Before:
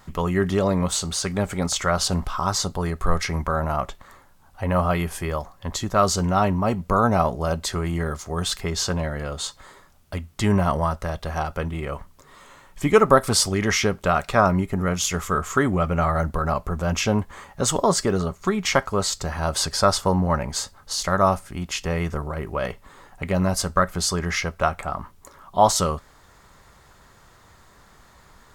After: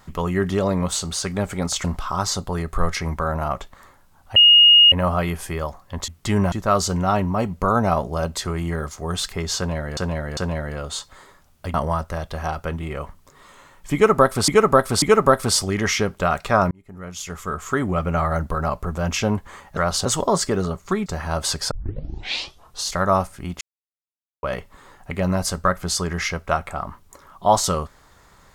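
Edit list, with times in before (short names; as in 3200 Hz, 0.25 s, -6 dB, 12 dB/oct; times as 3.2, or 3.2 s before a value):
1.84–2.12 move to 17.61
4.64 add tone 2860 Hz -7.5 dBFS 0.56 s
8.85–9.25 loop, 3 plays
10.22–10.66 move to 5.8
12.86–13.4 loop, 3 plays
14.55–15.89 fade in
18.62–19.18 cut
19.83 tape start 1.16 s
21.73–22.55 mute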